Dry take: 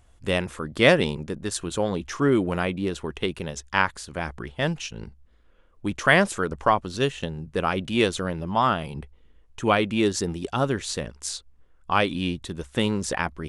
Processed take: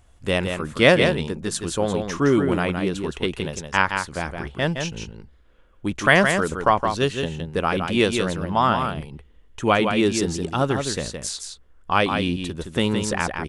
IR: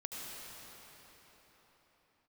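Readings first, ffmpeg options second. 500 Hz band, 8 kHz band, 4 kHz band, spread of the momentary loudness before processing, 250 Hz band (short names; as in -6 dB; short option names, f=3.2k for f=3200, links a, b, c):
+3.0 dB, +3.0 dB, +3.0 dB, 13 LU, +3.0 dB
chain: -af "aecho=1:1:166:0.501,volume=2dB"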